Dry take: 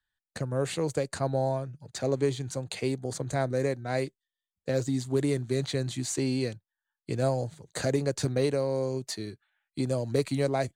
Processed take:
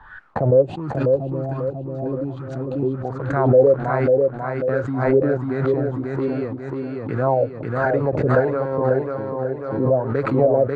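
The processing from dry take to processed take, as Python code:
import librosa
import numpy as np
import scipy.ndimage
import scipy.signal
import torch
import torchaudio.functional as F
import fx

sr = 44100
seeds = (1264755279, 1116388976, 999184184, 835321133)

p1 = fx.spec_box(x, sr, start_s=0.62, length_s=2.43, low_hz=400.0, high_hz=2400.0, gain_db=-18)
p2 = fx.quant_dither(p1, sr, seeds[0], bits=6, dither='none')
p3 = p1 + (p2 * librosa.db_to_amplitude(-10.0))
p4 = fx.filter_lfo_lowpass(p3, sr, shape='sine', hz=1.3, low_hz=500.0, high_hz=1500.0, q=7.6)
p5 = p4 + fx.echo_feedback(p4, sr, ms=542, feedback_pct=43, wet_db=-3.5, dry=0)
y = fx.pre_swell(p5, sr, db_per_s=52.0)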